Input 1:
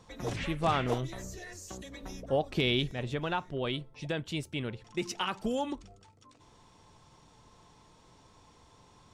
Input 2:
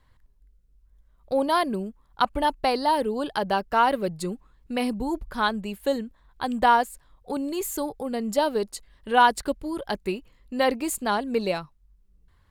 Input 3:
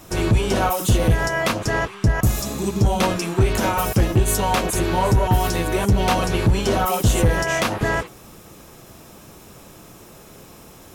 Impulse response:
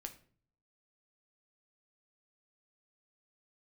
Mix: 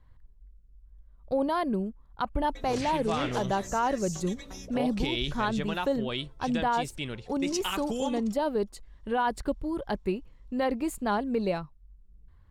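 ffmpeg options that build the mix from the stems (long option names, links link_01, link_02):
-filter_complex "[0:a]highshelf=frequency=2300:gain=12,agate=range=-21dB:threshold=-48dB:ratio=16:detection=peak,adynamicequalizer=threshold=0.00562:dfrequency=6400:dqfactor=0.89:tfrequency=6400:tqfactor=0.89:attack=5:release=100:ratio=0.375:range=3.5:mode=boostabove:tftype=bell,adelay=2450,volume=-1.5dB[link_01];[1:a]lowshelf=frequency=160:gain=8.5,volume=-2.5dB[link_02];[link_01][link_02]amix=inputs=2:normalize=0,highshelf=frequency=2700:gain=-9.5,alimiter=limit=-18.5dB:level=0:latency=1:release=37"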